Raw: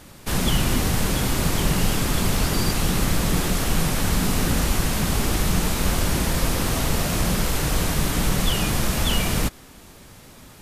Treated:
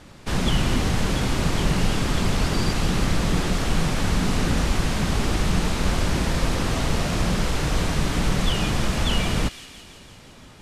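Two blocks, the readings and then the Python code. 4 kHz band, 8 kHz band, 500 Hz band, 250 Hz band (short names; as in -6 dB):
-1.5 dB, -6.0 dB, 0.0 dB, 0.0 dB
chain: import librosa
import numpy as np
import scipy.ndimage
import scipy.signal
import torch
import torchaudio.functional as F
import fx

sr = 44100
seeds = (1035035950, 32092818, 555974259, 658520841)

y = fx.air_absorb(x, sr, metres=67.0)
y = fx.echo_wet_highpass(y, sr, ms=168, feedback_pct=68, hz=2400.0, wet_db=-11.0)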